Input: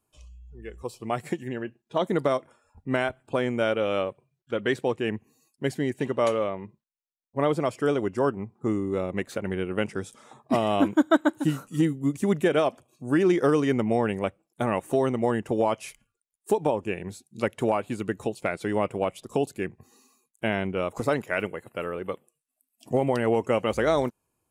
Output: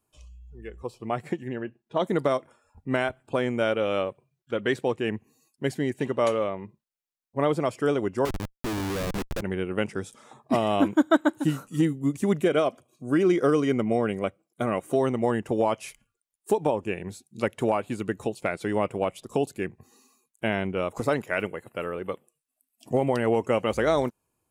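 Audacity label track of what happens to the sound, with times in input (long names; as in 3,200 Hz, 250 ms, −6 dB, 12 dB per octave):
0.680000	2.000000	high-shelf EQ 4,600 Hz −11 dB
8.250000	9.410000	comparator with hysteresis flips at −32 dBFS
12.420000	14.960000	notch comb filter 880 Hz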